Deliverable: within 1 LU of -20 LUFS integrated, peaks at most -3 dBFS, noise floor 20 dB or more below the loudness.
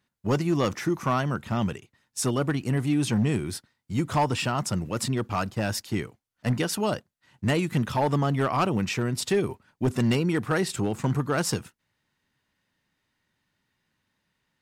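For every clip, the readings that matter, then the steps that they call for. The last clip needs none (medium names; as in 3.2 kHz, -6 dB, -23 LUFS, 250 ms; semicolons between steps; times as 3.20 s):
clipped samples 0.7%; clipping level -17.0 dBFS; loudness -27.0 LUFS; peak level -17.0 dBFS; loudness target -20.0 LUFS
-> clip repair -17 dBFS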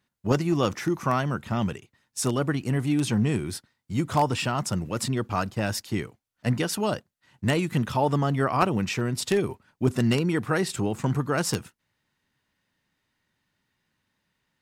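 clipped samples 0.0%; loudness -26.5 LUFS; peak level -8.0 dBFS; loudness target -20.0 LUFS
-> trim +6.5 dB; peak limiter -3 dBFS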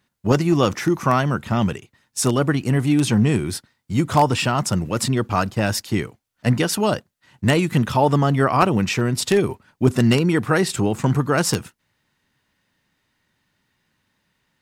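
loudness -20.0 LUFS; peak level -3.0 dBFS; noise floor -74 dBFS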